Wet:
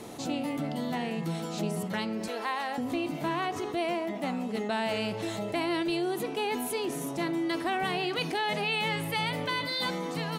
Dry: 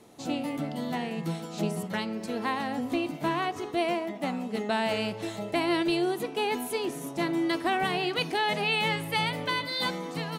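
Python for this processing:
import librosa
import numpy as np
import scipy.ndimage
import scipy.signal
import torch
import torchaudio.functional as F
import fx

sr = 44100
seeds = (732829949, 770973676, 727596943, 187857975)

y = fx.highpass(x, sr, hz=540.0, slope=12, at=(2.28, 2.78))
y = fx.env_flatten(y, sr, amount_pct=50)
y = y * 10.0 ** (-4.0 / 20.0)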